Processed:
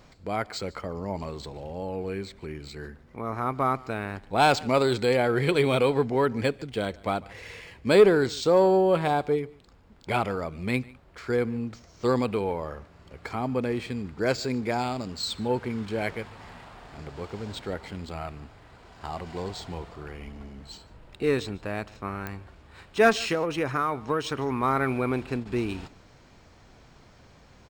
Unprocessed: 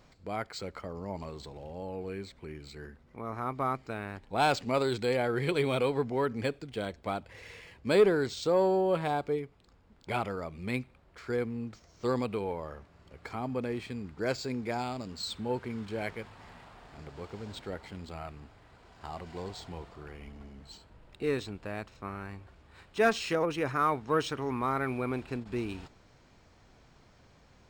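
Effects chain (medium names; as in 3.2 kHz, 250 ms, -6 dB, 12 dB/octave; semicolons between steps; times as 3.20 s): 23.14–24.63 s: compression, threshold -29 dBFS, peak gain reduction 7 dB; delay 148 ms -23 dB; clicks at 22.27 s, -25 dBFS; trim +6 dB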